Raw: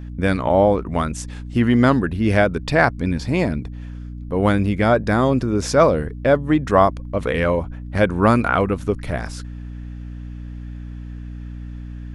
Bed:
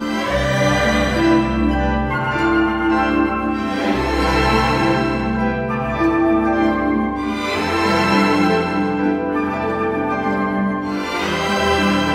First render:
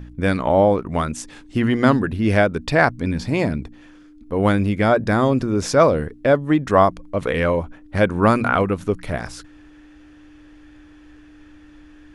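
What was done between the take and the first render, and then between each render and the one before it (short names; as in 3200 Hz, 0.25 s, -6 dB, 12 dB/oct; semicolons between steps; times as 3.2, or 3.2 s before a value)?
de-hum 60 Hz, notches 4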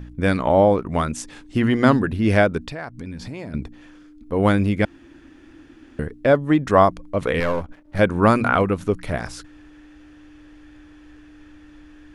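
2.58–3.54 compressor 4:1, threshold -31 dBFS; 4.85–5.99 room tone; 7.4–7.99 half-wave gain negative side -12 dB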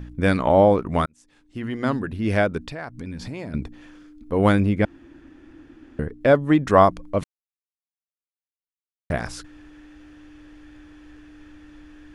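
1.06–3.16 fade in; 4.6–6.21 high shelf 2100 Hz -7.5 dB; 7.24–9.1 mute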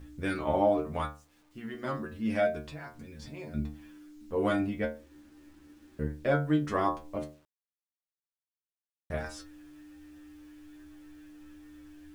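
metallic resonator 73 Hz, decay 0.42 s, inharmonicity 0.002; bit-crush 11-bit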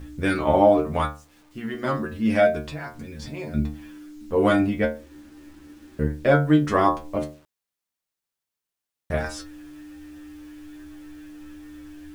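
gain +9 dB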